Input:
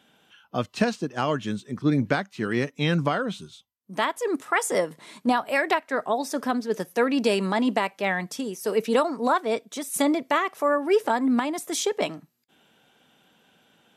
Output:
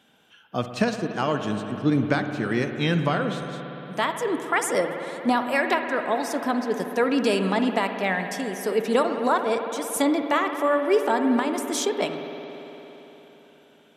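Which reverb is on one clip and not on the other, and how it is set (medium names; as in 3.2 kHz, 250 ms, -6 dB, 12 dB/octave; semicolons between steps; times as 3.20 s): spring tank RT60 3.9 s, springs 57 ms, chirp 55 ms, DRR 6 dB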